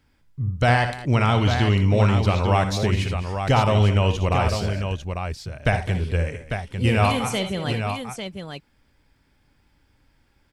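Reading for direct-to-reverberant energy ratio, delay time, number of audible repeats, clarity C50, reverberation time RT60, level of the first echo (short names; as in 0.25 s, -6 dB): none, 58 ms, 3, none, none, -10.5 dB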